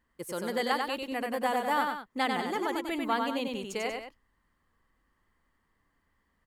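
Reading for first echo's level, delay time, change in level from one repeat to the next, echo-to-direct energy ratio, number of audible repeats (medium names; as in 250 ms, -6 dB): -4.0 dB, 95 ms, -6.5 dB, -3.0 dB, 2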